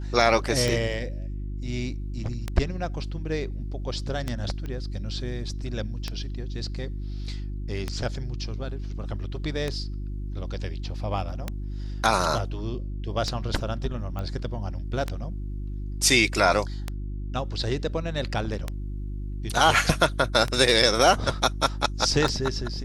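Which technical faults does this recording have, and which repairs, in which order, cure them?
hum 50 Hz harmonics 7 -32 dBFS
tick 33 1/3 rpm
4.66 s: pop -23 dBFS
14.19 s: pop -21 dBFS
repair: de-click; de-hum 50 Hz, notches 7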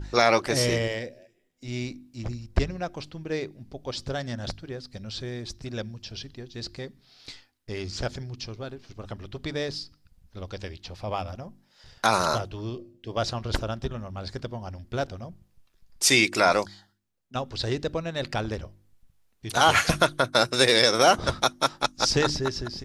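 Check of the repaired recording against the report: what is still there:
nothing left

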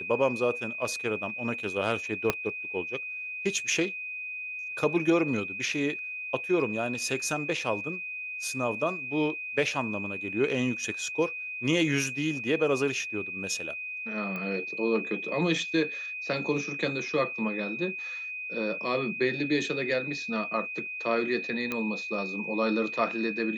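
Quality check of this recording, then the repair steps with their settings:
whine 2.5 kHz -34 dBFS
2.30 s: pop -9 dBFS
14.36 s: pop -23 dBFS
21.72 s: pop -16 dBFS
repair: de-click; band-stop 2.5 kHz, Q 30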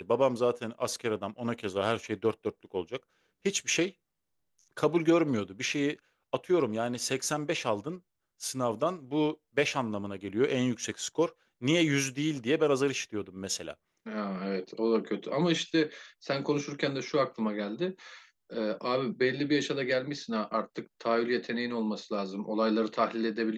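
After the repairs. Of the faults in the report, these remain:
2.30 s: pop

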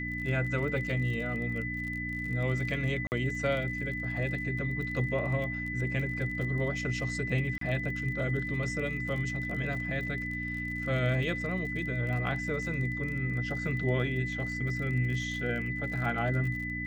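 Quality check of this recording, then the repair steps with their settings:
crackle 41 per s -38 dBFS
hum 60 Hz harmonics 5 -38 dBFS
whine 2 kHz -35 dBFS
3.07–3.12 s: dropout 49 ms
7.58–7.61 s: dropout 33 ms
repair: de-click; de-hum 60 Hz, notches 5; band-stop 2 kHz, Q 30; interpolate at 3.07 s, 49 ms; interpolate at 7.58 s, 33 ms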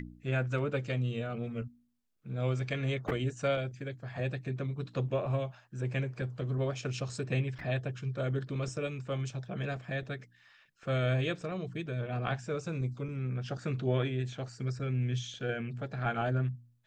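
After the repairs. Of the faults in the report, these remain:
nothing left

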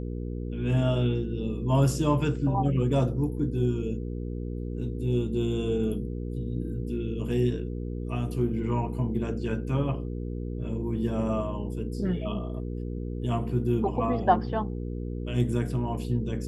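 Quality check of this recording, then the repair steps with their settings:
hum 60 Hz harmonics 8 -33 dBFS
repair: de-hum 60 Hz, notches 8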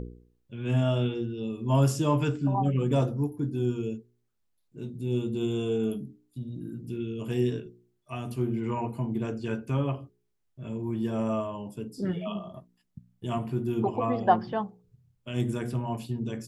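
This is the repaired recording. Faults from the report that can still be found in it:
nothing left

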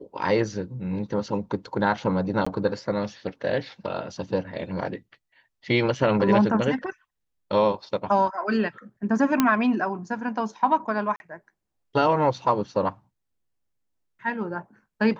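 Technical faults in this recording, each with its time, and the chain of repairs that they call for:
2.45–2.46 s: dropout 15 ms
9.40 s: pop -5 dBFS
11.16–11.20 s: dropout 41 ms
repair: de-click; interpolate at 2.45 s, 15 ms; interpolate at 11.16 s, 41 ms

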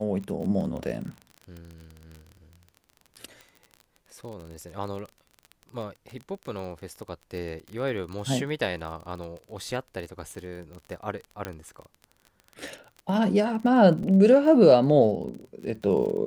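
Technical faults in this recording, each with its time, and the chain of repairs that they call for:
crackle 27 per s -34 dBFS
11.45 s: pop -16 dBFS
14.03 s: dropout 2.8 ms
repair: de-click; interpolate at 14.03 s, 2.8 ms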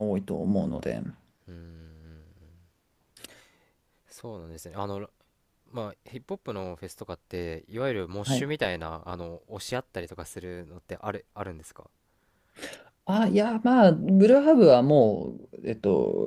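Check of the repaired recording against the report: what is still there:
nothing left

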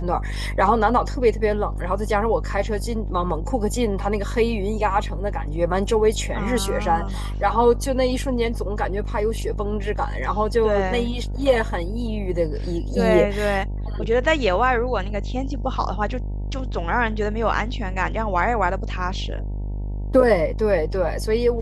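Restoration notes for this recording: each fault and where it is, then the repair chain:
buzz 50 Hz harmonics 19 -27 dBFS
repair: de-hum 50 Hz, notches 19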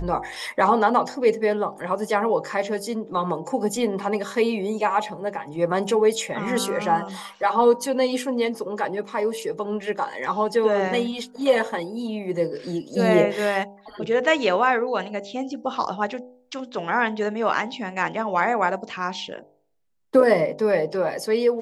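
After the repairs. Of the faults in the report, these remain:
nothing left

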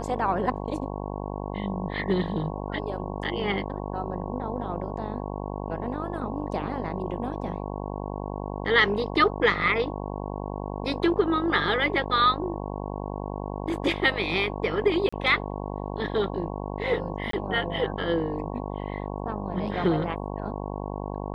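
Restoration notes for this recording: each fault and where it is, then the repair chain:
buzz 50 Hz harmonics 22 -33 dBFS
15.09–15.12 s: dropout 35 ms
17.31–17.33 s: dropout 23 ms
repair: de-hum 50 Hz, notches 22; interpolate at 15.09 s, 35 ms; interpolate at 17.31 s, 23 ms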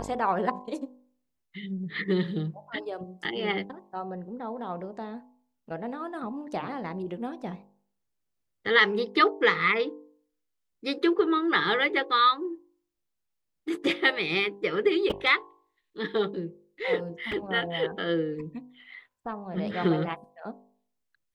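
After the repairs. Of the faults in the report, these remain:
nothing left

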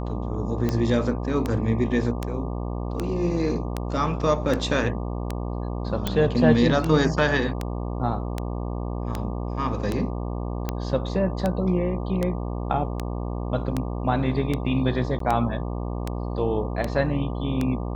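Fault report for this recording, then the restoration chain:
buzz 60 Hz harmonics 20 -29 dBFS
tick 78 rpm -12 dBFS
6.07 s: pop
15.19–15.20 s: dropout 13 ms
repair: de-click; de-hum 60 Hz, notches 20; interpolate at 15.19 s, 13 ms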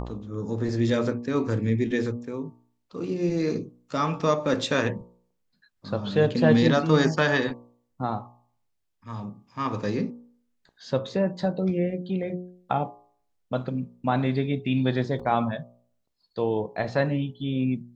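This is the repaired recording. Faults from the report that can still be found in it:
nothing left

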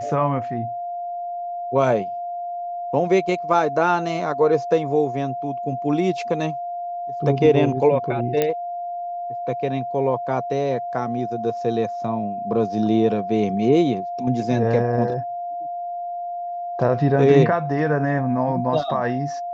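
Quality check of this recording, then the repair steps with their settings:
whine 700 Hz -26 dBFS
8.42 s: pop -7 dBFS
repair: de-click; band-stop 700 Hz, Q 30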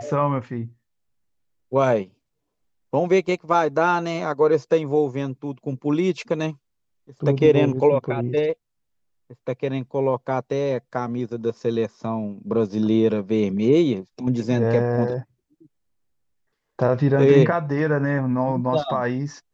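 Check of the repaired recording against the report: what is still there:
nothing left

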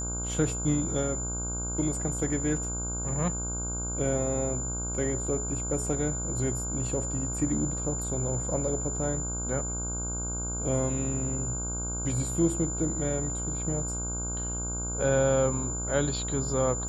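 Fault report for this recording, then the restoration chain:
buzz 60 Hz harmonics 26 -35 dBFS
whine 7.1 kHz -33 dBFS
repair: de-hum 60 Hz, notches 26; band-stop 7.1 kHz, Q 30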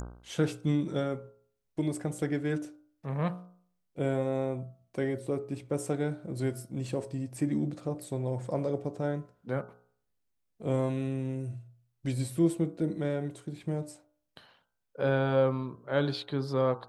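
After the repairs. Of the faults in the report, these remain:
nothing left

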